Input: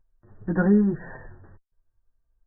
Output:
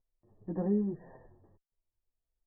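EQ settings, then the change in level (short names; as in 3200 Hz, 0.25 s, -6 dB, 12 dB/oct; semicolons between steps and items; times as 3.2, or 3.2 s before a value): running mean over 30 samples; low shelf 140 Hz -7.5 dB; low shelf 320 Hz -5 dB; -5.0 dB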